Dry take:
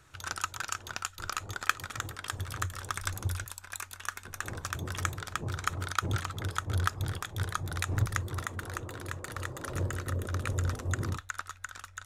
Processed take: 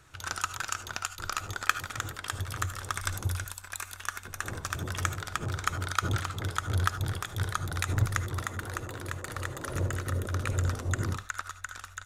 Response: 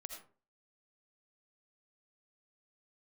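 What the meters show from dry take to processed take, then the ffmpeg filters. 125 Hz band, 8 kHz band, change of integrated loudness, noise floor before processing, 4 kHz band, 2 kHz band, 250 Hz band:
+2.0 dB, +2.0 dB, +2.0 dB, -54 dBFS, +2.0 dB, +2.0 dB, +2.0 dB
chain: -filter_complex "[0:a]aecho=1:1:98:0.075,asplit=2[s0][s1];[1:a]atrim=start_sample=2205,atrim=end_sample=4410,asetrate=48510,aresample=44100[s2];[s1][s2]afir=irnorm=-1:irlink=0,volume=1.58[s3];[s0][s3]amix=inputs=2:normalize=0,volume=0.708"

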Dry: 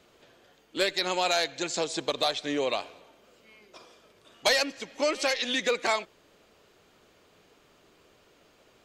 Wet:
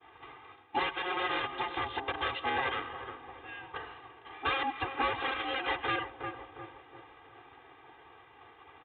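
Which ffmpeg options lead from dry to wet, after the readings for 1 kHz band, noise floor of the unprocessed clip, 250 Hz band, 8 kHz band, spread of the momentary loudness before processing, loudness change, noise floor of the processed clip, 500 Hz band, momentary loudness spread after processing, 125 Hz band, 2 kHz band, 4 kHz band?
+0.5 dB, -62 dBFS, -6.5 dB, under -40 dB, 6 LU, -6.0 dB, -57 dBFS, -10.5 dB, 19 LU, +1.5 dB, -2.5 dB, -9.0 dB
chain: -filter_complex "[0:a]aeval=exprs='0.211*(cos(1*acos(clip(val(0)/0.211,-1,1)))-cos(1*PI/2))+0.0299*(cos(4*acos(clip(val(0)/0.211,-1,1)))-cos(4*PI/2))+0.075*(cos(7*acos(clip(val(0)/0.211,-1,1)))-cos(7*PI/2))':c=same,aeval=exprs='val(0)*sin(2*PI*540*n/s)':c=same,asplit=2[s0][s1];[s1]adelay=353,lowpass=f=1000:p=1,volume=0.126,asplit=2[s2][s3];[s3]adelay=353,lowpass=f=1000:p=1,volume=0.53,asplit=2[s4][s5];[s5]adelay=353,lowpass=f=1000:p=1,volume=0.53,asplit=2[s6][s7];[s7]adelay=353,lowpass=f=1000:p=1,volume=0.53[s8];[s0][s2][s4][s6][s8]amix=inputs=5:normalize=0,aresample=8000,volume=15,asoftclip=hard,volume=0.0668,aresample=44100,alimiter=level_in=2:limit=0.0631:level=0:latency=1:release=302,volume=0.501,highpass=130,lowpass=2500,equalizer=f=170:t=o:w=1:g=-9,agate=range=0.0224:threshold=0.00126:ratio=3:detection=peak,aecho=1:1:2.5:0.91,volume=2.82"

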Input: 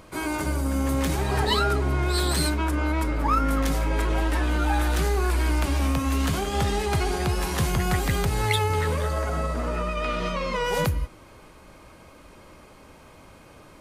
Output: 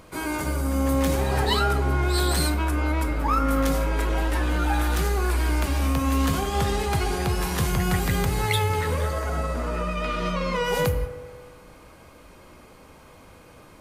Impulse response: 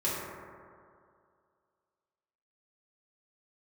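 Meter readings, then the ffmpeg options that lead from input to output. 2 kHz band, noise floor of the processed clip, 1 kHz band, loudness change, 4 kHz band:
+0.5 dB, -49 dBFS, +0.5 dB, +0.5 dB, 0.0 dB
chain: -filter_complex "[0:a]asplit=2[s0][s1];[s1]equalizer=f=14000:t=o:w=0.93:g=13.5[s2];[1:a]atrim=start_sample=2205,asetrate=57330,aresample=44100[s3];[s2][s3]afir=irnorm=-1:irlink=0,volume=0.188[s4];[s0][s4]amix=inputs=2:normalize=0,volume=0.841"

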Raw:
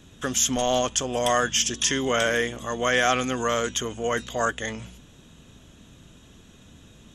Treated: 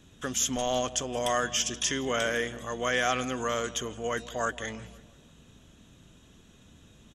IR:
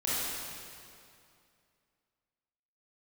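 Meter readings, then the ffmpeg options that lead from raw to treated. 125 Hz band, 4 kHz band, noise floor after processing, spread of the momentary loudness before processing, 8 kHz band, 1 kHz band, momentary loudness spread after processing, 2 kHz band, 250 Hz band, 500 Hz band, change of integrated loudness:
-5.5 dB, -5.5 dB, -57 dBFS, 7 LU, -5.5 dB, -5.5 dB, 7 LU, -5.5 dB, -5.5 dB, -5.5 dB, -5.5 dB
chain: -filter_complex "[0:a]asplit=2[s0][s1];[s1]adelay=168,lowpass=f=1700:p=1,volume=0.15,asplit=2[s2][s3];[s3]adelay=168,lowpass=f=1700:p=1,volume=0.54,asplit=2[s4][s5];[s5]adelay=168,lowpass=f=1700:p=1,volume=0.54,asplit=2[s6][s7];[s7]adelay=168,lowpass=f=1700:p=1,volume=0.54,asplit=2[s8][s9];[s9]adelay=168,lowpass=f=1700:p=1,volume=0.54[s10];[s0][s2][s4][s6][s8][s10]amix=inputs=6:normalize=0,volume=0.531"

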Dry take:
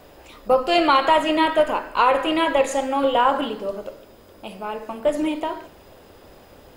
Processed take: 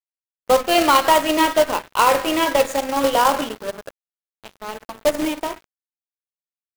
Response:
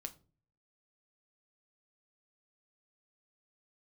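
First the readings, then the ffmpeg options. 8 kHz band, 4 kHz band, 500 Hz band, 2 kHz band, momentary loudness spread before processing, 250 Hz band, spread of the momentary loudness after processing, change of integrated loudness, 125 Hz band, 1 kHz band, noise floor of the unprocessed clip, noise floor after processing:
+11.0 dB, +3.0 dB, +1.0 dB, +2.0 dB, 17 LU, +0.5 dB, 17 LU, +2.0 dB, no reading, +1.5 dB, -49 dBFS, under -85 dBFS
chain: -af "aeval=exprs='sgn(val(0))*max(abs(val(0))-0.0251,0)':c=same,acrusher=bits=2:mode=log:mix=0:aa=0.000001,volume=1.33"

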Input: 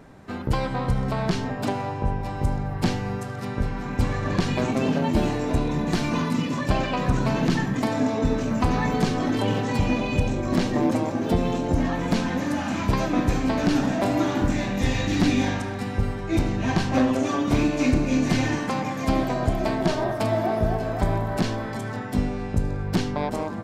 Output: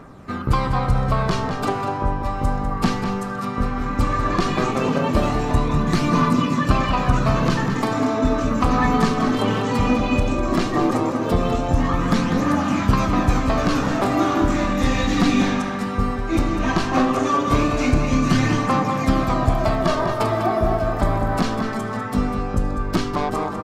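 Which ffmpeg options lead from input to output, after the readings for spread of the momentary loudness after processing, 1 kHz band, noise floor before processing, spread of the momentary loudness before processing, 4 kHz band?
5 LU, +7.0 dB, -31 dBFS, 5 LU, +3.0 dB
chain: -filter_complex "[0:a]equalizer=f=1200:w=6:g=13,aphaser=in_gain=1:out_gain=1:delay=4.8:decay=0.34:speed=0.16:type=triangular,asplit=2[s0][s1];[s1]adelay=198.3,volume=0.447,highshelf=f=4000:g=-4.46[s2];[s0][s2]amix=inputs=2:normalize=0,volume=1.26"

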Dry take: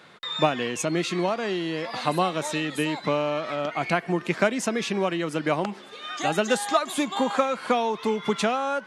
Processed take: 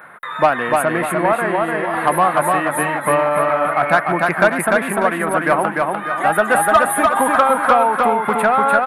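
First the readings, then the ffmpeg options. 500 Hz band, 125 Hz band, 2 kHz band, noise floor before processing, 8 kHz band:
+8.5 dB, +4.0 dB, +12.5 dB, -44 dBFS, +7.5 dB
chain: -filter_complex "[0:a]firequalizer=gain_entry='entry(430,0);entry(640,8);entry(1600,12);entry(2900,-8);entry(5800,-29);entry(9800,13)':delay=0.05:min_phase=1,acontrast=48,asplit=2[s0][s1];[s1]aecho=0:1:297|594|891|1188|1485:0.708|0.283|0.113|0.0453|0.0181[s2];[s0][s2]amix=inputs=2:normalize=0,volume=0.708"

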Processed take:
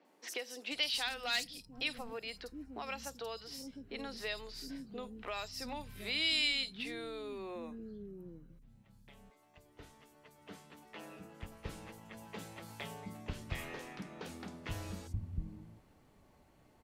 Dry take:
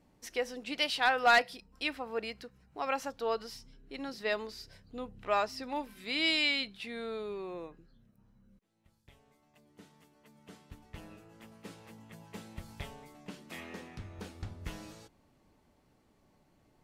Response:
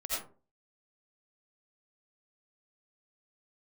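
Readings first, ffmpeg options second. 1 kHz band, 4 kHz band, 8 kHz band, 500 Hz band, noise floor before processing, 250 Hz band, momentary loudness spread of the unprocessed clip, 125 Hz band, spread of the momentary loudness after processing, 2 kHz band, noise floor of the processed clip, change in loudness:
-12.5 dB, -1.0 dB, +1.5 dB, -8.5 dB, -69 dBFS, -3.0 dB, 23 LU, +3.0 dB, 19 LU, -6.5 dB, -66 dBFS, -6.0 dB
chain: -filter_complex "[0:a]acrossover=split=270|5100[s0][s1][s2];[s2]adelay=50[s3];[s0]adelay=710[s4];[s4][s1][s3]amix=inputs=3:normalize=0,acrossover=split=180|3000[s5][s6][s7];[s6]acompressor=threshold=0.00562:ratio=10[s8];[s5][s8][s7]amix=inputs=3:normalize=0,volume=1.5"

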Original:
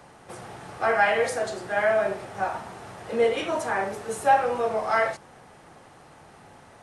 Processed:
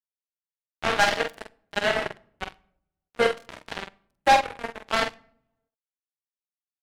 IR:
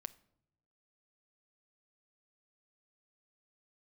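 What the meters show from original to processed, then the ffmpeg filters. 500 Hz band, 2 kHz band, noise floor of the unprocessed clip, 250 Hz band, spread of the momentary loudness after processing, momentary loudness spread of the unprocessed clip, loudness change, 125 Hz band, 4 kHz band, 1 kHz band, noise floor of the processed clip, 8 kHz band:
-4.5 dB, 0.0 dB, -51 dBFS, -1.5 dB, 19 LU, 20 LU, 0.0 dB, -1.0 dB, +8.5 dB, -1.0 dB, under -85 dBFS, +0.5 dB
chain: -filter_complex "[0:a]acrusher=bits=2:mix=0:aa=0.5,asplit=2[s0][s1];[1:a]atrim=start_sample=2205,adelay=46[s2];[s1][s2]afir=irnorm=-1:irlink=0,volume=0.75[s3];[s0][s3]amix=inputs=2:normalize=0"

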